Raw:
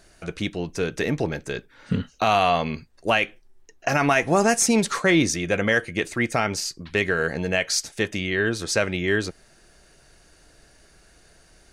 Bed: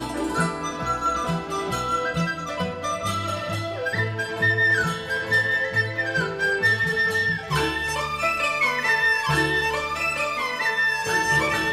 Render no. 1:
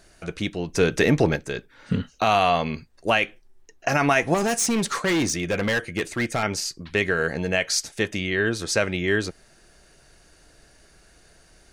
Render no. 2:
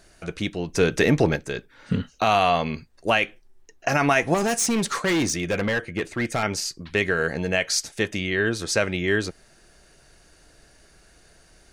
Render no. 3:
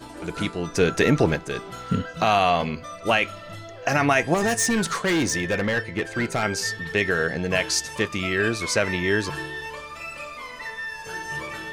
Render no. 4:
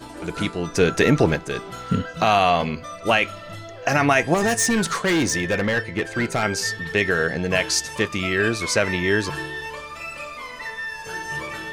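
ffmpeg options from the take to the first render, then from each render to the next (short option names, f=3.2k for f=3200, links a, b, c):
-filter_complex "[0:a]asettb=1/sr,asplit=3[a][b][c];[a]atrim=end=0.744[d];[b]atrim=start=0.74:end=1.36,asetpts=PTS-STARTPTS,afade=t=in:d=0.004:c=qsin,afade=t=out:st=0.616:d=0.004:c=qsin,acontrast=50[e];[c]atrim=start=1.356[f];[d][e]acrossfade=d=0.004:c1=hsin:c2=qsin[g];[g][f]acrossfade=d=0.004:c1=qsin:c2=hsin,asettb=1/sr,asplit=3[h][i][j];[h]atrim=end=4.344[k];[i]atrim=start=4.34:end=6.43,asetpts=PTS-STARTPTS,afade=t=in:d=0.004:c=qsin,afade=t=out:st=2.086:d=0.004:c=qsin,asoftclip=type=hard:threshold=-19dB[l];[j]atrim=start=6.426[m];[k][l]acrossfade=d=0.004:c1=hsin:c2=qsin[n];[n][m]acrossfade=d=0.004:c1=qsin:c2=hsin"
-filter_complex "[0:a]asettb=1/sr,asplit=3[a][b][c];[a]atrim=end=5.624[d];[b]atrim=start=5.62:end=6.25,asetpts=PTS-STARTPTS,afade=t=in:d=0.004:c=qsin,afade=t=out:st=0.626:d=0.004:c=qsin,highshelf=f=4.2k:g=-10[e];[c]atrim=start=6.246[f];[d][e]acrossfade=d=0.004:c1=hsin:c2=qsin[g];[g][f]acrossfade=d=0.004:c1=qsin:c2=hsin"
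-filter_complex "[1:a]volume=-11dB[a];[0:a][a]amix=inputs=2:normalize=0"
-af "volume=2dB"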